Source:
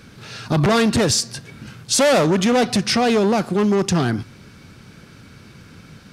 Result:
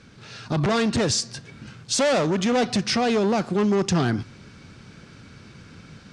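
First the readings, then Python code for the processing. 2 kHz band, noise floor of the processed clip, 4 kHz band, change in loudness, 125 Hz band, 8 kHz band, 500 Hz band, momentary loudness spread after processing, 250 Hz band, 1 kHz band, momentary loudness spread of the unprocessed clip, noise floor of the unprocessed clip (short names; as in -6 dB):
-4.5 dB, -48 dBFS, -4.5 dB, -4.5 dB, -4.5 dB, -5.5 dB, -4.5 dB, 18 LU, -4.5 dB, -4.5 dB, 13 LU, -45 dBFS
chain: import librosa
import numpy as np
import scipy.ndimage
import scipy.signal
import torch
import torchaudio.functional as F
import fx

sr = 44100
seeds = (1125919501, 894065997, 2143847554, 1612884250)

y = scipy.signal.sosfilt(scipy.signal.butter(4, 8300.0, 'lowpass', fs=sr, output='sos'), x)
y = fx.rider(y, sr, range_db=10, speed_s=0.5)
y = F.gain(torch.from_numpy(y), -4.0).numpy()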